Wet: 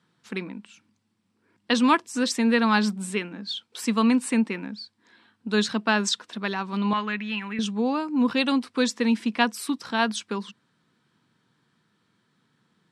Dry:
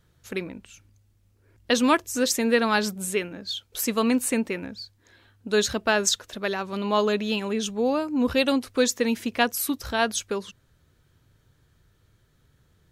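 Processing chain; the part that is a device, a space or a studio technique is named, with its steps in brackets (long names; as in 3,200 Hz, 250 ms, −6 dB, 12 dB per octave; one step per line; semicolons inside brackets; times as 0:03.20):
television speaker (loudspeaker in its box 170–8,500 Hz, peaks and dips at 210 Hz +7 dB, 400 Hz −4 dB, 580 Hz −9 dB, 1,000 Hz +5 dB, 6,600 Hz −9 dB)
0:06.93–0:07.59: octave-band graphic EQ 125/250/500/1,000/2,000/4,000/8,000 Hz −4/−8/−11/−4/+10/−9/−10 dB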